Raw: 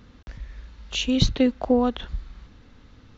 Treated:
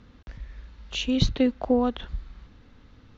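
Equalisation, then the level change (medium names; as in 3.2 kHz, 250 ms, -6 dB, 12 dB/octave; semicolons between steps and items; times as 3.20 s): distance through air 58 m; -2.0 dB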